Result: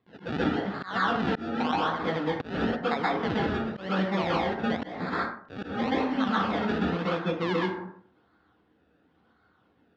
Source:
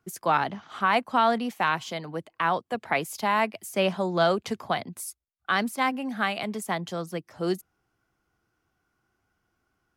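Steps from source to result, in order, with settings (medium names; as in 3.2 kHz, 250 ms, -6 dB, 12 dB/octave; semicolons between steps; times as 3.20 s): decimation with a swept rate 29×, swing 100% 0.94 Hz; plate-style reverb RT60 0.51 s, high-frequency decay 0.5×, pre-delay 115 ms, DRR -7 dB; compression 6:1, threshold -26 dBFS, peak gain reduction 15.5 dB; cabinet simulation 130–3700 Hz, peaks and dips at 150 Hz -4 dB, 350 Hz -5 dB, 620 Hz -6 dB, 910 Hz -4 dB, 2.4 kHz -5 dB; slow attack 210 ms; trim +5 dB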